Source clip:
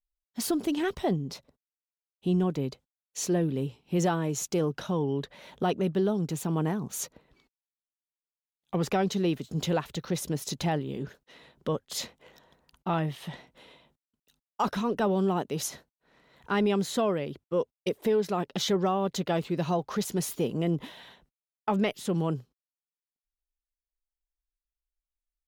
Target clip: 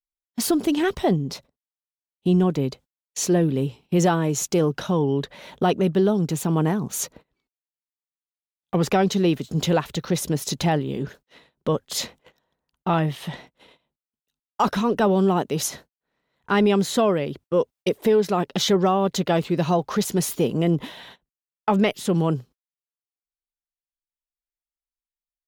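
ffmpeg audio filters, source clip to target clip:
-af "agate=range=0.1:threshold=0.00251:ratio=16:detection=peak,volume=2.24"

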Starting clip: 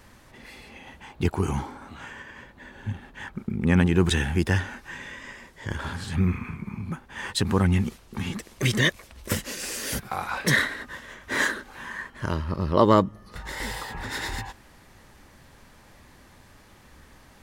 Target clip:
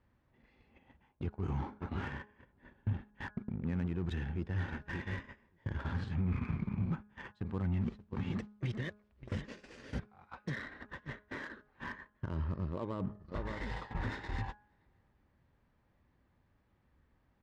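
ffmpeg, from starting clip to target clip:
-filter_complex "[0:a]lowpass=6100,asplit=2[s0][s1];[s1]adelay=575,lowpass=f=2300:p=1,volume=0.0944,asplit=2[s2][s3];[s3]adelay=575,lowpass=f=2300:p=1,volume=0.24[s4];[s0][s2][s4]amix=inputs=3:normalize=0,areverse,acompressor=threshold=0.0316:ratio=12,areverse,alimiter=level_in=2.11:limit=0.0631:level=0:latency=1:release=406,volume=0.473,highpass=f=130:p=1,aemphasis=mode=reproduction:type=bsi,agate=range=0.0891:threshold=0.01:ratio=16:detection=peak,highshelf=f=4700:g=-9,asplit=2[s5][s6];[s6]acrusher=bits=5:mix=0:aa=0.5,volume=0.282[s7];[s5][s7]amix=inputs=2:normalize=0,bandreject=f=208.7:t=h:w=4,bandreject=f=417.4:t=h:w=4,bandreject=f=626.1:t=h:w=4,bandreject=f=834.8:t=h:w=4,bandreject=f=1043.5:t=h:w=4,bandreject=f=1252.2:t=h:w=4,bandreject=f=1460.9:t=h:w=4,bandreject=f=1669.6:t=h:w=4,volume=0.841"

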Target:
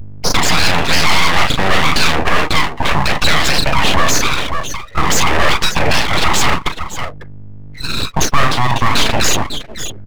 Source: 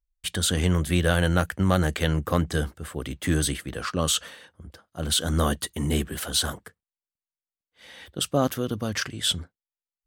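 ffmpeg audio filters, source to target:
-filter_complex "[0:a]highpass=310,equalizer=f=600:t=q:w=4:g=10,equalizer=f=960:t=q:w=4:g=-9,equalizer=f=2100:t=q:w=4:g=8,lowpass=f=2900:w=0.5412,lowpass=f=2900:w=1.3066,asplit=2[s0][s1];[s1]adelay=37,volume=0.398[s2];[s0][s2]amix=inputs=2:normalize=0,aeval=exprs='val(0)+0.001*(sin(2*PI*50*n/s)+sin(2*PI*2*50*n/s)/2+sin(2*PI*3*50*n/s)/3+sin(2*PI*4*50*n/s)/4+sin(2*PI*5*50*n/s)/5)':c=same,acrossover=split=1100[s3][s4];[s3]acompressor=threshold=0.0178:ratio=6[s5];[s5][s4]amix=inputs=2:normalize=0,flanger=delay=6.1:depth=1.4:regen=-29:speed=1.6:shape=triangular,aresample=11025,asoftclip=type=hard:threshold=0.0251,aresample=44100,adynamicequalizer=threshold=0.00355:dfrequency=610:dqfactor=0.7:tfrequency=610:tqfactor=0.7:attack=5:release=100:ratio=0.375:range=2.5:mode=boostabove:tftype=bell,acompressor=mode=upward:threshold=0.00355:ratio=2.5,aecho=1:1:548:0.2,afftdn=nr=21:nf=-45,aeval=exprs='abs(val(0))':c=same,alimiter=level_in=47.3:limit=0.891:release=50:level=0:latency=1,volume=0.891"

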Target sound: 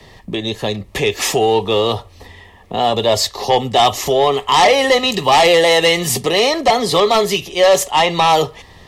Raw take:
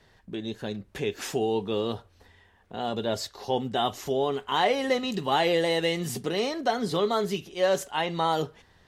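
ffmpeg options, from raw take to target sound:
-filter_complex "[0:a]acrossover=split=110|450|4400[s0][s1][s2][s3];[s1]acompressor=threshold=0.00501:ratio=6[s4];[s0][s4][s2][s3]amix=inputs=4:normalize=0,aeval=exprs='0.251*sin(PI/2*2.51*val(0)/0.251)':c=same,asuperstop=centerf=1500:order=4:qfactor=3.9,volume=2"

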